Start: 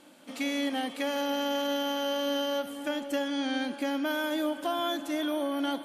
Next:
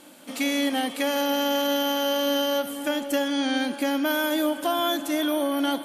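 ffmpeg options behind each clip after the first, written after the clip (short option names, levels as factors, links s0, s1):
-af "highshelf=f=9400:g=11,volume=1.88"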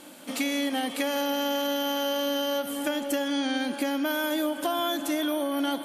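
-af "acompressor=threshold=0.0447:ratio=4,volume=1.26"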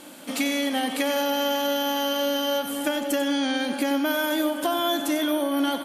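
-filter_complex "[0:a]asplit=2[s0][s1];[s1]adelay=93.29,volume=0.316,highshelf=f=4000:g=-2.1[s2];[s0][s2]amix=inputs=2:normalize=0,volume=1.41"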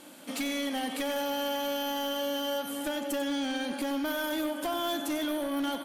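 -af "asoftclip=type=hard:threshold=0.0891,volume=0.501"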